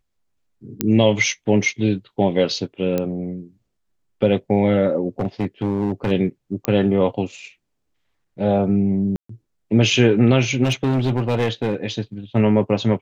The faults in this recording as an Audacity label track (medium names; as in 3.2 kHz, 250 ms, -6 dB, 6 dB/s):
0.810000	0.810000	pop -4 dBFS
2.980000	2.980000	pop -9 dBFS
5.190000	6.120000	clipped -16 dBFS
6.650000	6.650000	pop -6 dBFS
9.160000	9.290000	dropout 134 ms
10.630000	11.750000	clipped -15 dBFS